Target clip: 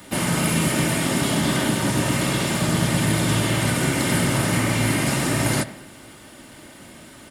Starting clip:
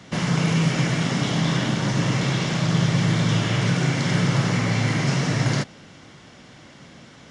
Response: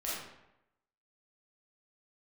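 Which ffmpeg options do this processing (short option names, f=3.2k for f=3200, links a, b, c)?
-filter_complex "[0:a]aexciter=amount=14.1:drive=6:freq=8.7k,aecho=1:1:3.3:0.49,asplit=3[a][b][c];[b]asetrate=22050,aresample=44100,atempo=2,volume=-14dB[d];[c]asetrate=58866,aresample=44100,atempo=0.749154,volume=-8dB[e];[a][d][e]amix=inputs=3:normalize=0,asplit=2[f][g];[1:a]atrim=start_sample=2205,lowpass=3.2k[h];[g][h]afir=irnorm=-1:irlink=0,volume=-15dB[i];[f][i]amix=inputs=2:normalize=0"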